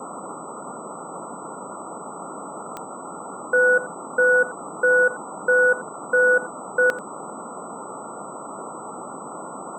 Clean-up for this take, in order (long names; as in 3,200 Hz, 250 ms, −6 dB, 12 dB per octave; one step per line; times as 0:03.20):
click removal
notch filter 8,000 Hz, Q 30
noise reduction from a noise print 30 dB
echo removal 87 ms −17.5 dB